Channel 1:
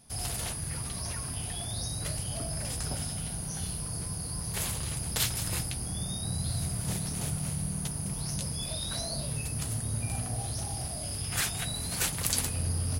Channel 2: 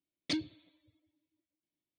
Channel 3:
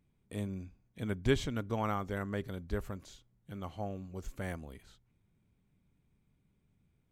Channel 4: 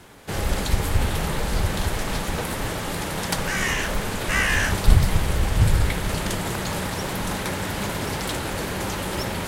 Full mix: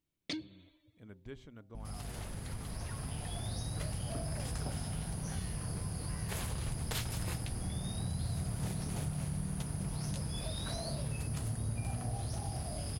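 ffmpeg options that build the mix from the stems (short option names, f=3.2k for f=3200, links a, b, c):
-filter_complex "[0:a]highshelf=f=3k:g=-9.5,dynaudnorm=f=150:g=17:m=11.5dB,aeval=exprs='val(0)+0.0158*(sin(2*PI*50*n/s)+sin(2*PI*2*50*n/s)/2+sin(2*PI*3*50*n/s)/3+sin(2*PI*4*50*n/s)/4+sin(2*PI*5*50*n/s)/5)':c=same,adelay=1750,volume=-3.5dB[a];[1:a]volume=2.5dB[b];[2:a]highshelf=f=4k:g=-9,bandreject=f=128:t=h:w=4,bandreject=f=256:t=h:w=4,bandreject=f=384:t=h:w=4,bandreject=f=512:t=h:w=4,bandreject=f=640:t=h:w=4,bandreject=f=768:t=h:w=4,bandreject=f=896:t=h:w=4,volume=-16.5dB[c];[3:a]acrossover=split=280[d][e];[e]acompressor=threshold=-27dB:ratio=6[f];[d][f]amix=inputs=2:normalize=0,adelay=1800,volume=-17dB[g];[a][b][c][g]amix=inputs=4:normalize=0,acompressor=threshold=-43dB:ratio=2"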